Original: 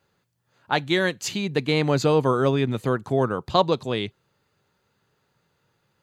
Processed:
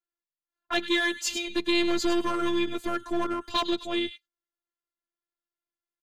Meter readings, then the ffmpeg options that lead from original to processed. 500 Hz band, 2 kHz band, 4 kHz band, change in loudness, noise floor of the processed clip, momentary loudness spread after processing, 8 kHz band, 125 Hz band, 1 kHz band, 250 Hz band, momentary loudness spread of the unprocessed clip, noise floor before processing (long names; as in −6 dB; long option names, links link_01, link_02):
−8.0 dB, −1.5 dB, +0.5 dB, −4.5 dB, below −85 dBFS, 6 LU, 0.0 dB, −23.5 dB, −6.0 dB, −2.0 dB, 7 LU, −72 dBFS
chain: -filter_complex "[0:a]agate=range=-28dB:threshold=-38dB:ratio=16:detection=peak,bandreject=frequency=790:width=12,aecho=1:1:6.5:1,afftfilt=real='hypot(re,im)*cos(PI*b)':imag='0':win_size=512:overlap=0.75,acrossover=split=240|1900[link_01][link_02][link_03];[link_02]asoftclip=type=hard:threshold=-26.5dB[link_04];[link_03]aecho=1:1:101:0.335[link_05];[link_01][link_04][link_05]amix=inputs=3:normalize=0"